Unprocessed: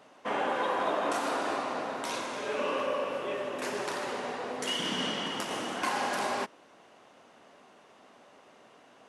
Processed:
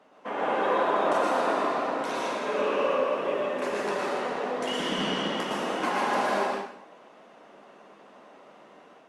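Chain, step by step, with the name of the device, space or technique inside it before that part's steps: treble shelf 3.3 kHz -10.5 dB; far-field microphone of a smart speaker (reverberation RT60 0.70 s, pre-delay 106 ms, DRR -1 dB; high-pass 160 Hz 24 dB/octave; level rider gain up to 4 dB; trim -1.5 dB; Opus 48 kbps 48 kHz)

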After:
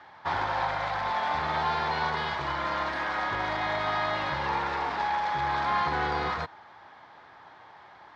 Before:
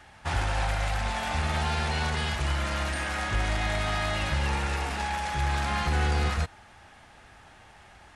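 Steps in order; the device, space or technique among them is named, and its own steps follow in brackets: kitchen radio (cabinet simulation 190–4300 Hz, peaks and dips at 220 Hz -8 dB, 1 kHz +9 dB, 2.7 kHz -10 dB); trim +1 dB

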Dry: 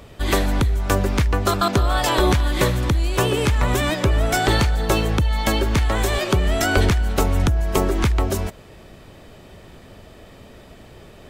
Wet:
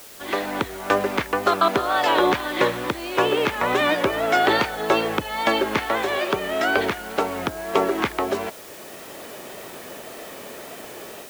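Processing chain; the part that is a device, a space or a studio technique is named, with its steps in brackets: dictaphone (band-pass 350–3100 Hz; level rider gain up to 14 dB; wow and flutter; white noise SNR 20 dB); trim -4.5 dB

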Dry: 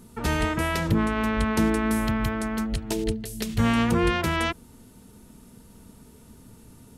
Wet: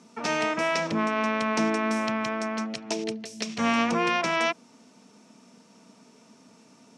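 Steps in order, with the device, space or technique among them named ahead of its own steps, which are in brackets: television speaker (cabinet simulation 200–7500 Hz, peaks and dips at 370 Hz -5 dB, 660 Hz +7 dB, 1.1 kHz +5 dB, 2.4 kHz +7 dB, 5.6 kHz +10 dB); trim -2 dB

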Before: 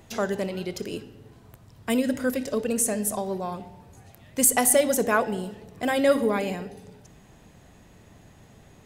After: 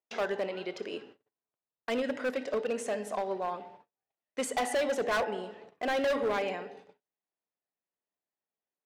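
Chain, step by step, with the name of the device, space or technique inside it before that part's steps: walkie-talkie (band-pass 440–3000 Hz; hard clipper -25.5 dBFS, distortion -6 dB; gate -51 dBFS, range -40 dB)

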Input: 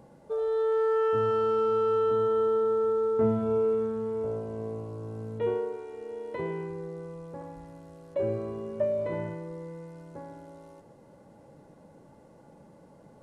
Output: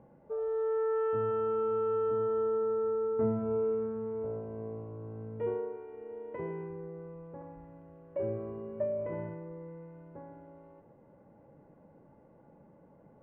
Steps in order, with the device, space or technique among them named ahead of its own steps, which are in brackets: steep low-pass 2.7 kHz 36 dB/octave; behind a face mask (treble shelf 2 kHz -7.5 dB); trim -4.5 dB

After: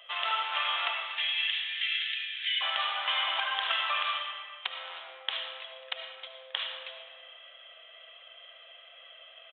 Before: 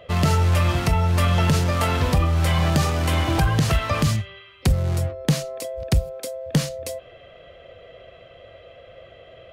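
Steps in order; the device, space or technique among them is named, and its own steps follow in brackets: 0.93–2.61 s: steep high-pass 1.7 kHz 72 dB/octave; musical greeting card (resampled via 8 kHz; high-pass 890 Hz 24 dB/octave; peaking EQ 3.2 kHz +9.5 dB 0.48 oct); algorithmic reverb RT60 1.8 s, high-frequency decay 0.5×, pre-delay 35 ms, DRR 2.5 dB; trim -5 dB

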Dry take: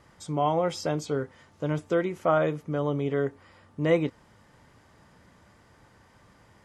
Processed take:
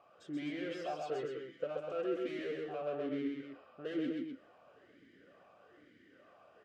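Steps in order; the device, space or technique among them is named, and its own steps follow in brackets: talk box (valve stage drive 35 dB, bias 0.4; talking filter a-i 1.1 Hz); 1.00–1.64 s: comb 6 ms, depth 93%; loudspeakers at several distances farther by 45 m -3 dB, 86 m -7 dB; trim +7.5 dB

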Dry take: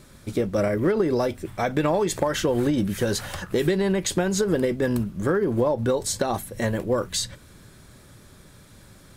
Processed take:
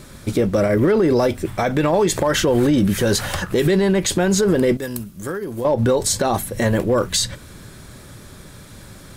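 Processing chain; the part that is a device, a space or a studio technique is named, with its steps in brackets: 4.77–5.65 s: pre-emphasis filter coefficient 0.8; limiter into clipper (peak limiter -17.5 dBFS, peak gain reduction 7.5 dB; hard clipper -18.5 dBFS, distortion -34 dB); trim +9 dB

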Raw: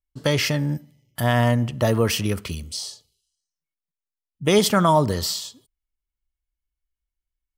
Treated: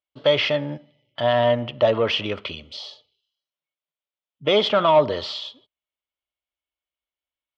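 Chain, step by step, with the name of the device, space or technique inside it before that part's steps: overdrive pedal into a guitar cabinet (overdrive pedal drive 13 dB, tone 6.3 kHz, clips at -7.5 dBFS; cabinet simulation 97–3600 Hz, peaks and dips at 180 Hz -7 dB, 590 Hz +8 dB, 1.7 kHz -6 dB, 3.3 kHz +6 dB); trim -3.5 dB

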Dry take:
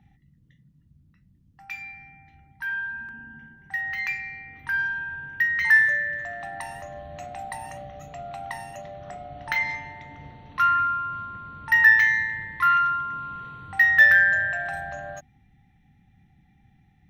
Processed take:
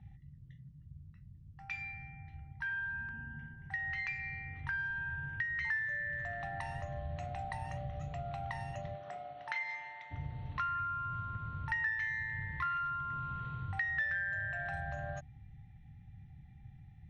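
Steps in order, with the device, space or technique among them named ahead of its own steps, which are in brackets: jukebox (low-pass 5 kHz 12 dB/octave; resonant low shelf 170 Hz +10 dB, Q 1.5; compression 4:1, threshold -32 dBFS, peak gain reduction 17.5 dB); 8.95–10.10 s: high-pass 280 Hz -> 860 Hz 12 dB/octave; trim -4 dB

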